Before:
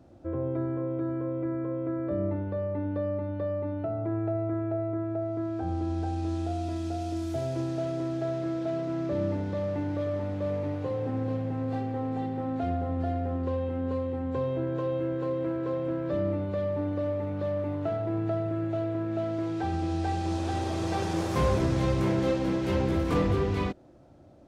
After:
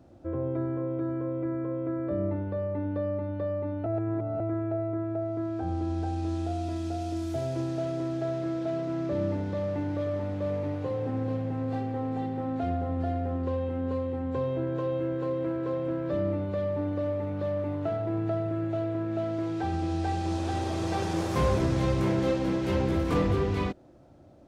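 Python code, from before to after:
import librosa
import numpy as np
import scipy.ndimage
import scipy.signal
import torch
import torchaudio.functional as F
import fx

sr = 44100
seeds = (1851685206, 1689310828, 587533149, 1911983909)

y = fx.edit(x, sr, fx.reverse_span(start_s=3.86, length_s=0.54), tone=tone)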